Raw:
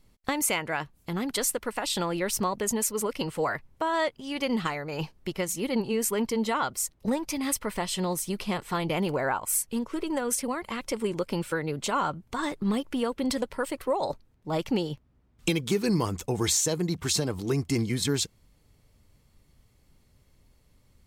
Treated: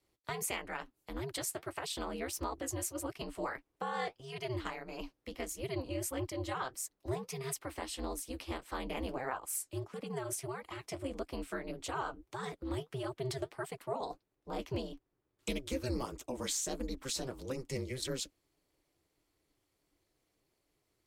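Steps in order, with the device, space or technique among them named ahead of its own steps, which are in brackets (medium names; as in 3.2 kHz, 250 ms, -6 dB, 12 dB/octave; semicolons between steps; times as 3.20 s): steep high-pass 150 Hz 96 dB/octave; alien voice (ring modulator 130 Hz; flange 1.6 Hz, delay 1.7 ms, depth 9.6 ms, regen -48%); trim -3.5 dB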